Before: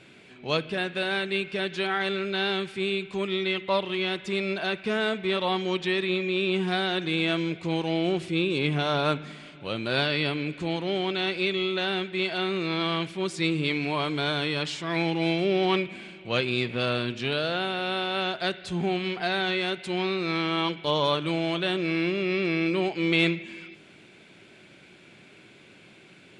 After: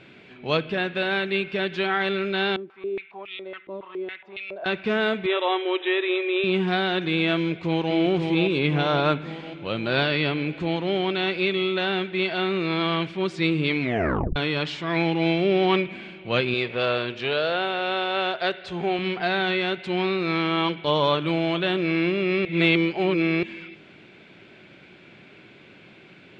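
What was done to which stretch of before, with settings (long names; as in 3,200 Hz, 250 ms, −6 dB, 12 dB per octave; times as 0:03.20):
0:02.56–0:04.66: band-pass on a step sequencer 7.2 Hz 310–2,800 Hz
0:05.26–0:06.44: linear-phase brick-wall band-pass 300–4,000 Hz
0:07.37–0:07.94: delay throw 530 ms, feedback 60%, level −4.5 dB
0:13.81: tape stop 0.55 s
0:16.54–0:18.99: low shelf with overshoot 340 Hz −6.5 dB, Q 1.5
0:22.45–0:23.43: reverse
whole clip: low-pass filter 3,600 Hz 12 dB per octave; level +3.5 dB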